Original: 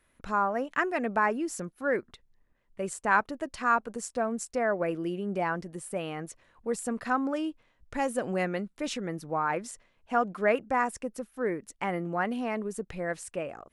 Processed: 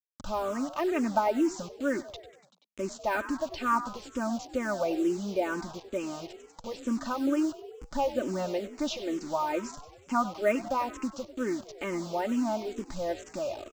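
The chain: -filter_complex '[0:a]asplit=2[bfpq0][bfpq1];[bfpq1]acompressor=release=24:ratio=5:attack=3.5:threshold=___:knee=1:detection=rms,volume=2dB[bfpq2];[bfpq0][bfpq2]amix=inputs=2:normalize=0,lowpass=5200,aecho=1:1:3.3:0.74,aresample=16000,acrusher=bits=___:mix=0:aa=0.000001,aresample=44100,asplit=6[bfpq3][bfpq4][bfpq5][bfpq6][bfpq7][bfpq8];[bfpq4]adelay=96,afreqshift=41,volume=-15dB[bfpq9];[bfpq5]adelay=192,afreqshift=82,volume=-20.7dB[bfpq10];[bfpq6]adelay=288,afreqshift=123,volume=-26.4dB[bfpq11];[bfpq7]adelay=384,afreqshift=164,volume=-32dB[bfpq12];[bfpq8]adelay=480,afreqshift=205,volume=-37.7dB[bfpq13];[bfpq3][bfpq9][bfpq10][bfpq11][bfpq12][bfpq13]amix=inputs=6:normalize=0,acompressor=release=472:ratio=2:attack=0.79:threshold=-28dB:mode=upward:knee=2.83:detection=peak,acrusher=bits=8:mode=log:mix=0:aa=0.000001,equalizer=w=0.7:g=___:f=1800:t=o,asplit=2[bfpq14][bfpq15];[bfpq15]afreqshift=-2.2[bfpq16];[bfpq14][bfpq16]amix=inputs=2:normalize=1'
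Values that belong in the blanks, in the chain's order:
-43dB, 6, -8.5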